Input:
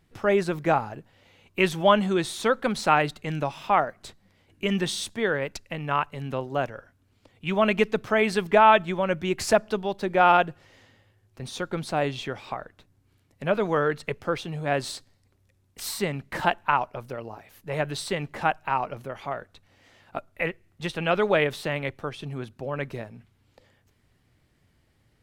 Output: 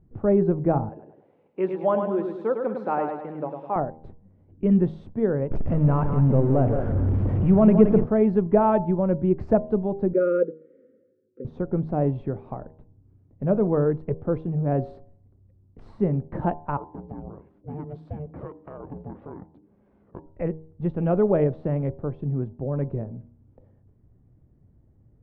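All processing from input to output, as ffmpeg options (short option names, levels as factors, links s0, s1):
-filter_complex "[0:a]asettb=1/sr,asplit=3[s0][s1][s2];[s0]atrim=end=0.894[s3];[s1]atrim=start=0.89:end=3.76,asetpts=PTS-STARTPTS,afade=t=in:d=0.004:c=qsin,afade=t=out:st=2.866:d=0.004:c=qsin,highpass=440,bandreject=f=660:w=11,aecho=1:1:103|206|309|412|515|618:0.531|0.25|0.117|0.0551|0.0259|0.0122,atrim=end_sample=126567[s4];[s2]atrim=start=3.756[s5];[s3][s4]acrossfade=d=0.004:c1=hsin:c2=qsin[s6];[s6][s5]acrossfade=d=0.004:c1=qsin:c2=hsin,asettb=1/sr,asplit=3[s7][s8][s9];[s7]atrim=end=5.514[s10];[s8]atrim=start=5.51:end=8.04,asetpts=PTS-STARTPTS,afade=t=in:d=0.004:c=qsin,afade=t=out:st=2.526:d=0.004:c=qsin,aeval=exprs='val(0)+0.5*0.0631*sgn(val(0))':c=same,equalizer=f=4000:t=o:w=0.24:g=-7.5,aecho=1:1:171:0.422,atrim=end_sample=111573[s11];[s9]atrim=start=8.036[s12];[s10][s11]acrossfade=d=0.004:c1=hsin:c2=qsin[s13];[s13][s12]acrossfade=d=0.004:c1=qsin:c2=hsin,asettb=1/sr,asplit=3[s14][s15][s16];[s14]atrim=end=10.134[s17];[s15]atrim=start=10.13:end=11.45,asetpts=PTS-STARTPTS,afade=t=in:d=0.004:c=qsin,afade=t=out:st=1.316:d=0.004:c=qsin,asuperstop=centerf=840:order=12:qfactor=1.1,highpass=f=260:w=0.5412,highpass=f=260:w=1.3066,equalizer=f=510:t=q:w=4:g=10,equalizer=f=1000:t=q:w=4:g=6,equalizer=f=1800:t=q:w=4:g=-6,equalizer=f=2800:t=q:w=4:g=-10,lowpass=f=3100:w=0.5412,lowpass=f=3100:w=1.3066[s18];[s16]atrim=start=11.446[s19];[s17][s18]acrossfade=d=0.004:c1=hsin:c2=qsin[s20];[s20][s19]acrossfade=d=0.004:c1=qsin:c2=hsin,asettb=1/sr,asplit=3[s21][s22][s23];[s21]atrim=end=16.774[s24];[s22]atrim=start=16.77:end=20.26,asetpts=PTS-STARTPTS,afade=t=in:d=0.004:c=qsin,afade=t=out:st=3.486:d=0.004:c=qsin,aeval=exprs='val(0)*sin(2*PI*300*n/s)':c=same,highpass=55,acompressor=threshold=0.0178:ratio=3:attack=3.2:release=140:knee=1:detection=peak[s25];[s23]atrim=start=20.256[s26];[s24][s25]acrossfade=d=0.004:c1=hsin:c2=qsin[s27];[s27][s26]acrossfade=d=0.004:c1=qsin:c2=hsin,lowpass=1000,tiltshelf=f=640:g=10,bandreject=f=79.25:t=h:w=4,bandreject=f=158.5:t=h:w=4,bandreject=f=237.75:t=h:w=4,bandreject=f=317:t=h:w=4,bandreject=f=396.25:t=h:w=4,bandreject=f=475.5:t=h:w=4,bandreject=f=554.75:t=h:w=4,bandreject=f=634:t=h:w=4,bandreject=f=713.25:t=h:w=4,bandreject=f=792.5:t=h:w=4,bandreject=f=871.75:t=h:w=4,bandreject=f=951:t=h:w=4,bandreject=f=1030.25:t=h:w=4"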